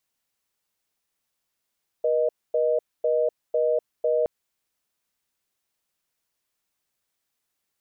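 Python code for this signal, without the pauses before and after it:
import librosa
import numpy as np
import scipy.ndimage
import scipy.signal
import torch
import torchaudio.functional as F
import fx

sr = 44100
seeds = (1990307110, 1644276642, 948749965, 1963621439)

y = fx.call_progress(sr, length_s=2.22, kind='reorder tone', level_db=-22.0)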